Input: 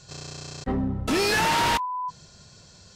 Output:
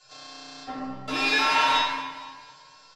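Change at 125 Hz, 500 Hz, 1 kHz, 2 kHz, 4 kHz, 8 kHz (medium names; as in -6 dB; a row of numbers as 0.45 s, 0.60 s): -16.5 dB, -7.0 dB, 0.0 dB, +2.0 dB, +2.0 dB, -7.5 dB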